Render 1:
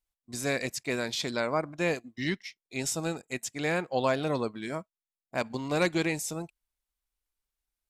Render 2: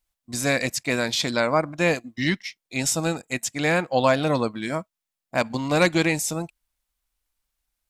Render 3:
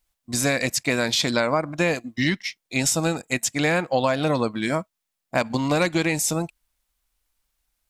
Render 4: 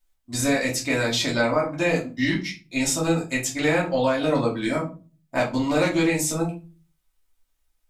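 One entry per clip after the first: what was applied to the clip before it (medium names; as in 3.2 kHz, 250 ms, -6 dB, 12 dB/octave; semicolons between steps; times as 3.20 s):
peaking EQ 400 Hz -9.5 dB 0.22 oct; trim +8 dB
compression 6:1, threshold -22 dBFS, peak gain reduction 8.5 dB; trim +4.5 dB
simulated room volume 160 m³, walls furnished, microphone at 2.7 m; trim -7.5 dB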